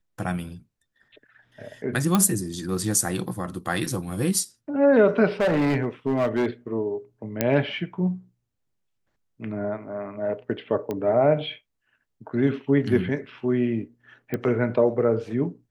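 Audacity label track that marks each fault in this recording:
2.150000	2.150000	pop -7 dBFS
5.400000	6.460000	clipped -18 dBFS
7.410000	7.410000	pop -6 dBFS
10.910000	10.910000	pop -17 dBFS
14.340000	14.340000	pop -15 dBFS

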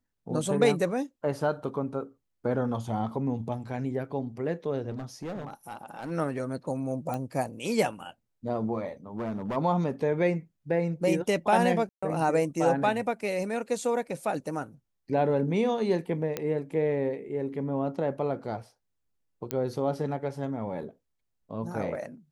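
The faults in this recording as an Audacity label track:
4.900000	6.120000	clipped -32 dBFS
7.140000	7.140000	pop -20 dBFS
9.180000	9.570000	clipped -28 dBFS
11.890000	12.030000	dropout 135 ms
16.370000	16.370000	pop -15 dBFS
19.510000	19.510000	pop -13 dBFS

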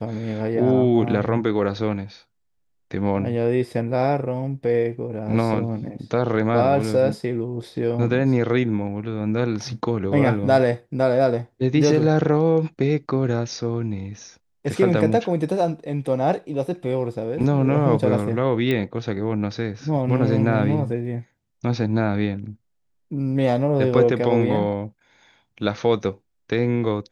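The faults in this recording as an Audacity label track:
18.710000	18.710000	pop -12 dBFS

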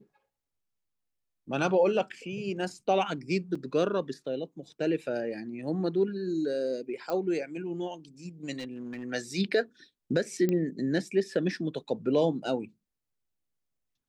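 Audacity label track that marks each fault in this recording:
3.550000	3.550000	dropout 4.5 ms
7.100000	7.100000	pop -21 dBFS
8.580000	9.040000	clipped -33.5 dBFS
10.490000	10.490000	pop -16 dBFS

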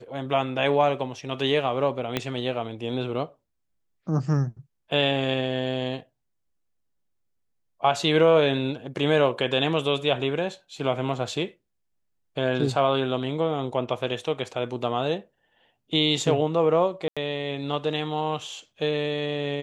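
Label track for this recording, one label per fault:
2.170000	2.170000	pop -10 dBFS
17.080000	17.170000	dropout 86 ms

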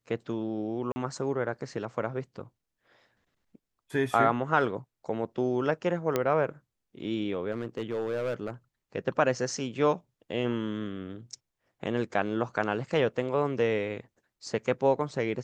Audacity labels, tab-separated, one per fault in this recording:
0.920000	0.960000	dropout 40 ms
6.160000	6.160000	pop -12 dBFS
7.510000	8.500000	clipped -26 dBFS

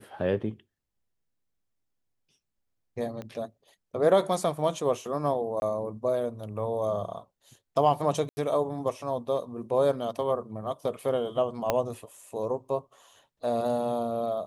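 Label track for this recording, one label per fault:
3.220000	3.220000	pop -25 dBFS
5.600000	5.620000	dropout 21 ms
8.290000	8.370000	dropout 80 ms
11.700000	11.700000	pop -10 dBFS

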